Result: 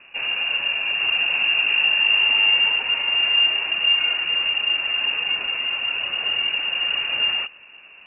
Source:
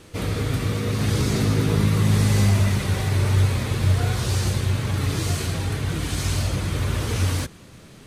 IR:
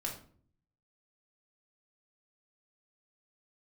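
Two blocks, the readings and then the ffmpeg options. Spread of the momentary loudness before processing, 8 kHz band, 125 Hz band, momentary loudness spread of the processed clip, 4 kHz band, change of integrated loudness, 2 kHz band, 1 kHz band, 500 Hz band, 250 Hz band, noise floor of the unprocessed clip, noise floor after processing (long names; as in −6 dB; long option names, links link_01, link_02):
7 LU, below −40 dB, below −35 dB, 7 LU, +15.0 dB, +4.0 dB, +14.5 dB, −1.5 dB, −11.5 dB, below −20 dB, −46 dBFS, −47 dBFS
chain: -af "lowpass=frequency=2500:width_type=q:width=0.5098,lowpass=frequency=2500:width_type=q:width=0.6013,lowpass=frequency=2500:width_type=q:width=0.9,lowpass=frequency=2500:width_type=q:width=2.563,afreqshift=-2900"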